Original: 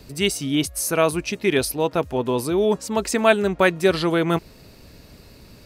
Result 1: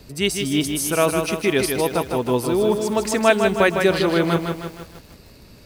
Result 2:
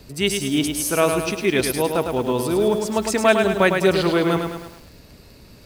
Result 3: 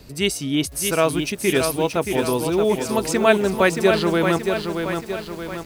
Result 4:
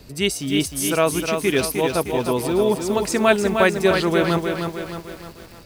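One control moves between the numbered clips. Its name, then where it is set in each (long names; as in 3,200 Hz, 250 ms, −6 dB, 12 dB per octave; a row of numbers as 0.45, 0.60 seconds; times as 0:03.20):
feedback echo at a low word length, delay time: 156, 105, 626, 308 milliseconds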